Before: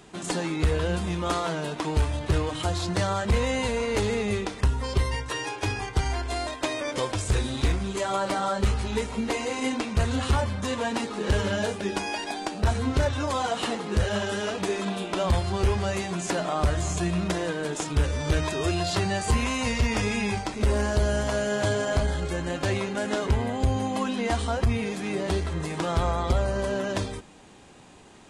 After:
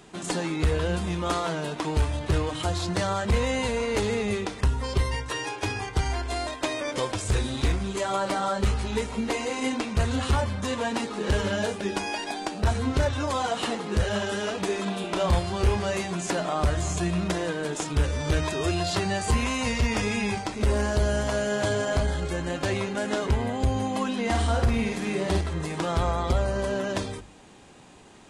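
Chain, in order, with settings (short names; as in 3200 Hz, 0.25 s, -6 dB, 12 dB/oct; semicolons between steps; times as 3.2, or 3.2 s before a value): notches 50/100 Hz; 15.01–16.04 doubler 29 ms -7.5 dB; 24.22–25.41 flutter echo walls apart 9 m, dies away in 0.6 s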